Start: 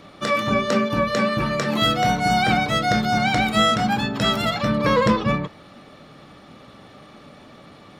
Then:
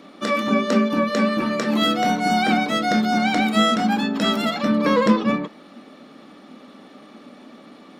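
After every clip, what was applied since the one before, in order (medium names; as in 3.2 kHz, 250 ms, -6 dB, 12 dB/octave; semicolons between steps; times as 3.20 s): resonant low shelf 160 Hz -13.5 dB, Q 3; trim -1.5 dB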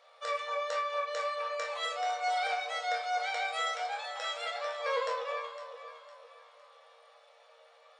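echo whose repeats swap between lows and highs 254 ms, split 930 Hz, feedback 62%, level -8 dB; FFT band-pass 460–9300 Hz; chord resonator D#2 sus4, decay 0.3 s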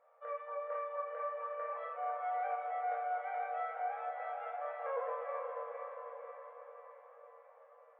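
Gaussian low-pass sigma 5.6 samples; echo that smears into a reverb 475 ms, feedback 57%, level -4 dB; trim -4.5 dB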